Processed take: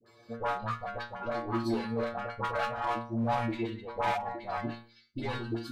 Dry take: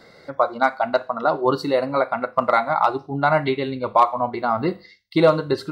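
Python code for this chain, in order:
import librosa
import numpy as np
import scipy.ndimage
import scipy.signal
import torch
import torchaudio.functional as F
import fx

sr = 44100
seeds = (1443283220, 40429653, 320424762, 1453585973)

p1 = fx.diode_clip(x, sr, knee_db=-15.0)
p2 = fx.stiff_resonator(p1, sr, f0_hz=140.0, decay_s=0.43, stiffness=0.002)
p3 = 10.0 ** (-30.5 / 20.0) * (np.abs((p2 / 10.0 ** (-30.5 / 20.0) + 3.0) % 4.0 - 2.0) - 1.0)
p4 = p2 + F.gain(torch.from_numpy(p3), -7.0).numpy()
p5 = fx.pitch_keep_formants(p4, sr, semitones=-3.5)
y = fx.dispersion(p5, sr, late='highs', ms=63.0, hz=830.0)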